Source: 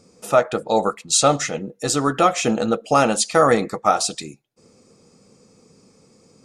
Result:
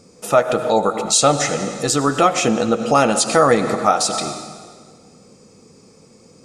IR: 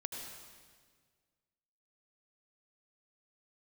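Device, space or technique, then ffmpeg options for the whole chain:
ducked reverb: -filter_complex "[0:a]asplit=3[a][b][c];[1:a]atrim=start_sample=2205[d];[b][d]afir=irnorm=-1:irlink=0[e];[c]apad=whole_len=284417[f];[e][f]sidechaincompress=threshold=-26dB:ratio=4:attack=16:release=121,volume=0.5dB[g];[a][g]amix=inputs=2:normalize=0"

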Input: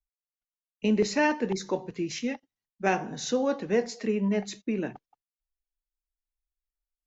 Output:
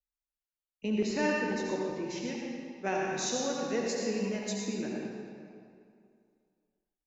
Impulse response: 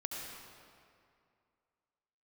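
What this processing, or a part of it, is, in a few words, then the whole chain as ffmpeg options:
stairwell: -filter_complex "[0:a]asettb=1/sr,asplit=3[a][b][c];[a]atrim=end=2.954[d];[b]atrim=start=2.95:end=4.66,asetpts=PTS-STARTPTS,afade=t=in:d=0.004:c=qsin,afade=t=out:st=1.706:d=0.004:c=qsin,aemphasis=mode=production:type=75fm[e];[c]atrim=start=4.656[f];[d][e]acrossfade=d=0.004:c1=hsin:c2=qsin[g];[g][f]acrossfade=d=0.004:c1=qsin:c2=hsin[h];[1:a]atrim=start_sample=2205[i];[h][i]afir=irnorm=-1:irlink=0,volume=-5dB"

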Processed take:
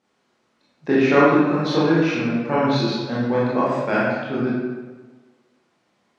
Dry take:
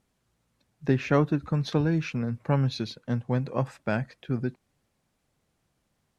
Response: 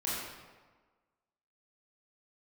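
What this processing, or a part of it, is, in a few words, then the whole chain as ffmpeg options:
supermarket ceiling speaker: -filter_complex "[0:a]highpass=260,lowpass=5.6k[a];[1:a]atrim=start_sample=2205[b];[a][b]afir=irnorm=-1:irlink=0,volume=6dB"

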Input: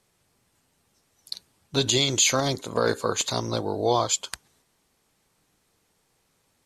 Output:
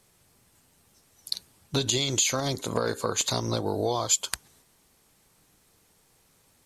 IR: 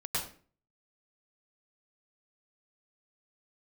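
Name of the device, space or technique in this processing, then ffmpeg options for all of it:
ASMR close-microphone chain: -filter_complex "[0:a]lowshelf=f=150:g=3.5,acompressor=threshold=-27dB:ratio=6,highshelf=f=9.2k:g=8,asettb=1/sr,asplit=3[a][b][c];[a]atrim=end=3.664[d];[b]atrim=start=3.66:end=4.27,asetpts=PTS-STARTPTS,afade=t=in:d=0.004:c=qsin,afade=t=out:st=0.606:d=0.004:c=qsin,highshelf=f=9.9k:g=9.5[e];[c]atrim=start=4.266[f];[d][e]acrossfade=d=0.004:c1=hsin:c2=qsin[g];[g][f]acrossfade=d=0.004:c1=qsin:c2=hsin,volume=3.5dB"

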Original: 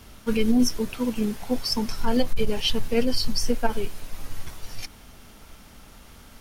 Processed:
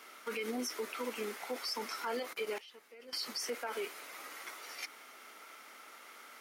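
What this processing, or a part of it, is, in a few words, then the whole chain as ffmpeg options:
laptop speaker: -filter_complex "[0:a]highpass=f=350:w=0.5412,highpass=f=350:w=1.3066,equalizer=f=1.3k:t=o:w=0.39:g=9,equalizer=f=2.1k:t=o:w=0.34:g=10,alimiter=limit=-24dB:level=0:latency=1:release=34,asettb=1/sr,asplit=3[a][b][c];[a]atrim=end=2.584[d];[b]atrim=start=2.58:end=3.13,asetpts=PTS-STARTPTS,afade=t=in:d=0.004:c=qsin,afade=t=out:st=0.546:d=0.004:c=qsin,agate=range=-17dB:threshold=-28dB:ratio=16:detection=peak[e];[c]atrim=start=3.126[f];[d][e]acrossfade=d=0.004:c1=hsin:c2=qsin[g];[g][f]acrossfade=d=0.004:c1=qsin:c2=hsin,volume=-5dB"

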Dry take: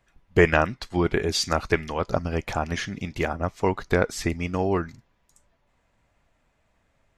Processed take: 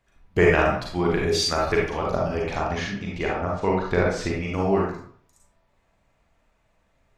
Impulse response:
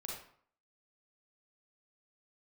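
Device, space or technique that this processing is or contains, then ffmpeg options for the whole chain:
bathroom: -filter_complex "[0:a]asettb=1/sr,asplit=3[a][b][c];[a]atrim=end=2.374[d];[b]atrim=start=2.37:end=4.51,asetpts=PTS-STARTPTS,afade=t=in:d=0.004:c=qsin,afade=t=out:st=2.136:d=0.004:c=qsin,lowpass=5.9k[e];[c]atrim=start=4.506[f];[d][e]acrossfade=d=0.004:c1=hsin:c2=qsin[g];[g][f]acrossfade=d=0.004:c1=qsin:c2=hsin[h];[1:a]atrim=start_sample=2205[i];[h][i]afir=irnorm=-1:irlink=0,volume=2.5dB"

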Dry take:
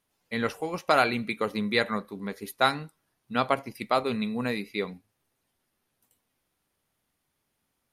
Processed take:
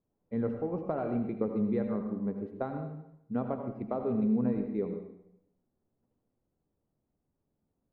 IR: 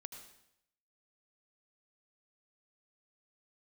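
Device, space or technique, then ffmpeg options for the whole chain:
television next door: -filter_complex "[0:a]acompressor=threshold=-24dB:ratio=4,lowpass=490[a];[1:a]atrim=start_sample=2205[b];[a][b]afir=irnorm=-1:irlink=0,volume=7dB"

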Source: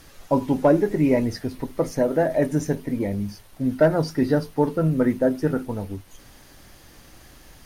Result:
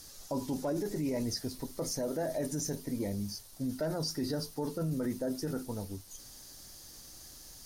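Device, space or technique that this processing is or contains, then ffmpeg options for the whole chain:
over-bright horn tweeter: -af "highshelf=f=3.6k:t=q:w=1.5:g=11.5,alimiter=limit=-17dB:level=0:latency=1:release=13,volume=-9dB"

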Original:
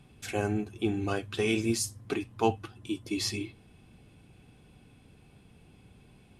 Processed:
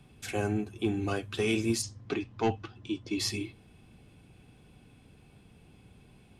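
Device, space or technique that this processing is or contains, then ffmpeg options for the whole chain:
one-band saturation: -filter_complex "[0:a]acrossover=split=290|3200[a][b][c];[b]asoftclip=type=tanh:threshold=-22.5dB[d];[a][d][c]amix=inputs=3:normalize=0,asplit=3[e][f][g];[e]afade=t=out:st=1.81:d=0.02[h];[f]lowpass=f=6.2k:w=0.5412,lowpass=f=6.2k:w=1.3066,afade=t=in:st=1.81:d=0.02,afade=t=out:st=3.18:d=0.02[i];[g]afade=t=in:st=3.18:d=0.02[j];[h][i][j]amix=inputs=3:normalize=0"

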